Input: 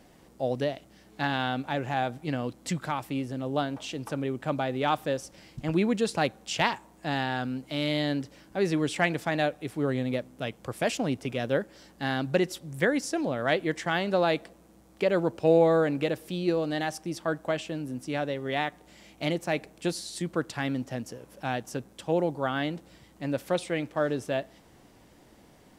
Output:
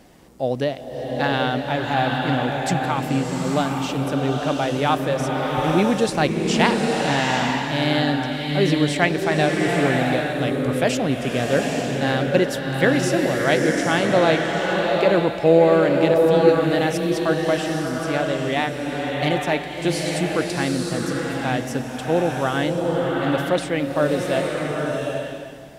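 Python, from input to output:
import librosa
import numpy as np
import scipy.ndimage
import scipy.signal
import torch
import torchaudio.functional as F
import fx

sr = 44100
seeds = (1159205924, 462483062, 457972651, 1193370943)

y = fx.rev_bloom(x, sr, seeds[0], attack_ms=850, drr_db=0.0)
y = y * 10.0 ** (6.0 / 20.0)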